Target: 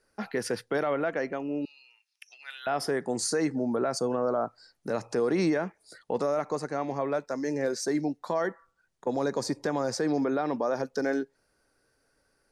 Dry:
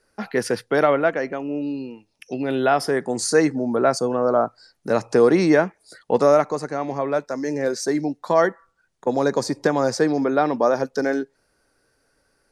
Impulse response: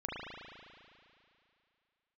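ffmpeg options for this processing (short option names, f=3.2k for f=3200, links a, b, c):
-filter_complex "[0:a]alimiter=limit=-13.5dB:level=0:latency=1:release=66,asettb=1/sr,asplit=3[a][b][c];[a]atrim=end=1.654[d];[b]atrim=start=1.65:end=2.67,asetpts=PTS-STARTPTS,afade=t=in:d=0.004:c=qsin,afade=t=out:st=1.016:d=0.004:c=qsin,highpass=f=1.4k:w=0.5412,highpass=f=1.4k:w=1.3066[e];[c]atrim=start=2.666[f];[d][e]acrossfade=d=0.004:c1=hsin:c2=qsin[g];[g][f]acrossfade=d=0.004:c1=qsin:c2=hsin,volume=-5dB"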